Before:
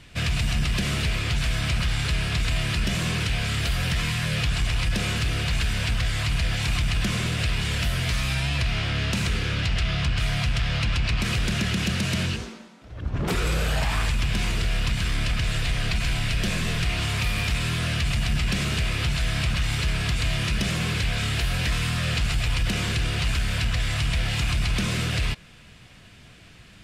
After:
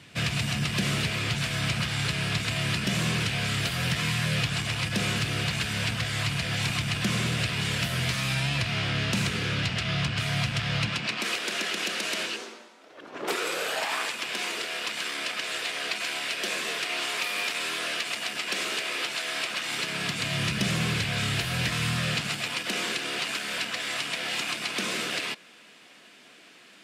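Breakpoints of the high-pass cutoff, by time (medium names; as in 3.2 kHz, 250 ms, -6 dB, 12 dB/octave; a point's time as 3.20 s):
high-pass 24 dB/octave
10.82 s 110 Hz
11.31 s 330 Hz
19.50 s 330 Hz
20.51 s 110 Hz
21.91 s 110 Hz
22.69 s 260 Hz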